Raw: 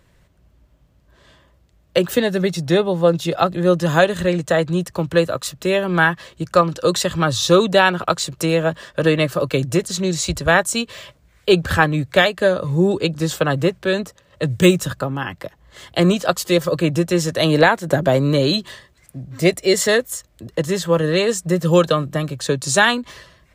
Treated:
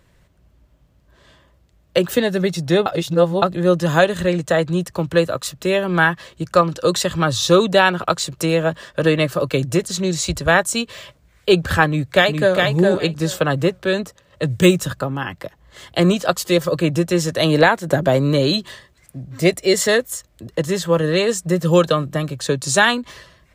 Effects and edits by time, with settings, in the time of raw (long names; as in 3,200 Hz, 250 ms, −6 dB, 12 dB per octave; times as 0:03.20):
0:02.86–0:03.42: reverse
0:11.87–0:12.59: delay throw 410 ms, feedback 15%, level −3.5 dB